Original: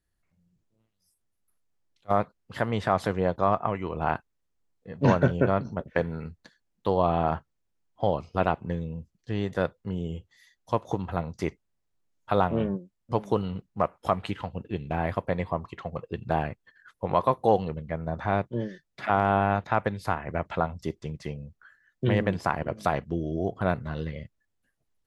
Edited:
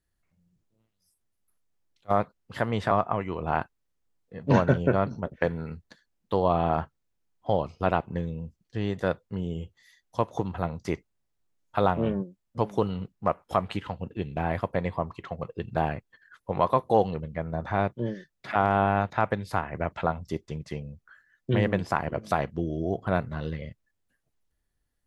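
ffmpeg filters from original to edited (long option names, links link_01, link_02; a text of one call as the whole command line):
ffmpeg -i in.wav -filter_complex "[0:a]asplit=2[link_01][link_02];[link_01]atrim=end=2.912[link_03];[link_02]atrim=start=3.448[link_04];[link_03][link_04]acrossfade=duration=0.004:curve1=hsin:curve2=hsin" out.wav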